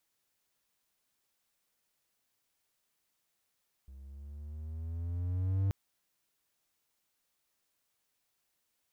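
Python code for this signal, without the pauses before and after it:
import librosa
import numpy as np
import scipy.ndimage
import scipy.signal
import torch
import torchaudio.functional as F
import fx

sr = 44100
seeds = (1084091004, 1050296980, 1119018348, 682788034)

y = fx.riser_tone(sr, length_s=1.83, level_db=-24, wave='triangle', hz=65.7, rise_st=7.0, swell_db=22.0)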